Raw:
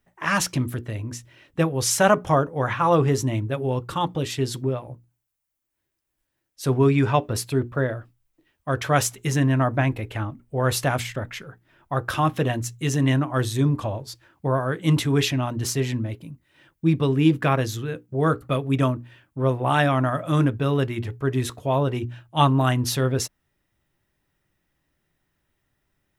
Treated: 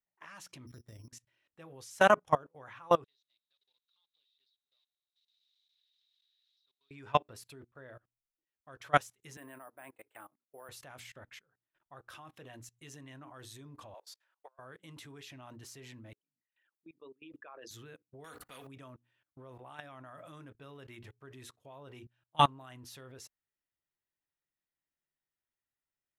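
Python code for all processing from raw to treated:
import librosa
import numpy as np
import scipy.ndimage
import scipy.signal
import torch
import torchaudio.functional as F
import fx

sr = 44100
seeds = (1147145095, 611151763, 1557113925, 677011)

y = fx.chain(x, sr, fx.low_shelf(hz=370.0, db=11.0),
    fx.level_steps(step_db=10),
    fx.resample_bad(factor=8, down='filtered', up='hold'), at=(0.67, 1.08))
y = fx.chain(y, sr, fx.crossing_spikes(level_db=-18.0),
    fx.bandpass_q(hz=3800.0, q=17.0),
    fx.air_absorb(metres=210.0), at=(3.04, 6.91))
y = fx.chain(y, sr, fx.highpass(hz=390.0, slope=12),
    fx.high_shelf(hz=3100.0, db=-11.0),
    fx.resample_bad(factor=4, down='filtered', up='hold'), at=(9.37, 10.69))
y = fx.chain(y, sr, fx.highpass(hz=560.0, slope=24),
    fx.over_compress(threshold_db=-34.0, ratio=-0.5), at=(13.94, 14.59))
y = fx.chain(y, sr, fx.envelope_sharpen(power=2.0),
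    fx.highpass(hz=710.0, slope=12),
    fx.sustainer(db_per_s=74.0), at=(16.13, 17.71))
y = fx.chain(y, sr, fx.comb(ms=4.1, depth=0.45),
    fx.spectral_comp(ratio=2.0), at=(18.24, 18.67))
y = fx.low_shelf(y, sr, hz=390.0, db=-10.5)
y = fx.level_steps(y, sr, step_db=20)
y = fx.upward_expand(y, sr, threshold_db=-55.0, expansion=1.5)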